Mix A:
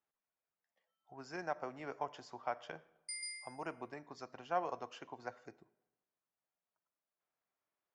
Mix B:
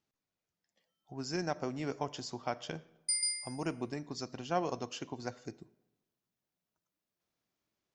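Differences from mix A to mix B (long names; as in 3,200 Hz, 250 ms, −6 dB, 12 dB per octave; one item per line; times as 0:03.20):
background −3.0 dB
master: remove three-way crossover with the lows and the highs turned down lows −15 dB, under 530 Hz, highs −16 dB, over 2,200 Hz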